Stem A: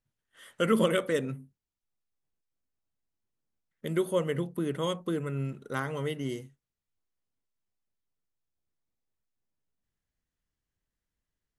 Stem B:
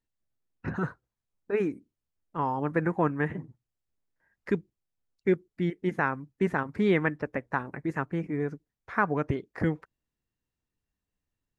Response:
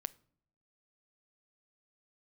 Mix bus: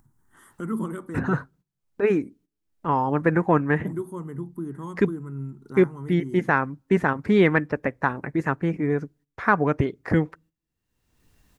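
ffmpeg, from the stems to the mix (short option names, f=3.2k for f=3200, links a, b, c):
-filter_complex "[0:a]firequalizer=gain_entry='entry(350,0);entry(530,-20);entry(880,0);entry(2600,-25);entry(7800,-8)':delay=0.05:min_phase=1,volume=-2.5dB,asplit=2[a][b];[b]volume=-11dB[c];[1:a]acontrast=28,adelay=500,volume=0.5dB,asplit=2[d][e];[e]volume=-18dB[f];[2:a]atrim=start_sample=2205[g];[c][f]amix=inputs=2:normalize=0[h];[h][g]afir=irnorm=-1:irlink=0[i];[a][d][i]amix=inputs=3:normalize=0,agate=range=-14dB:threshold=-53dB:ratio=16:detection=peak,acompressor=mode=upward:threshold=-34dB:ratio=2.5"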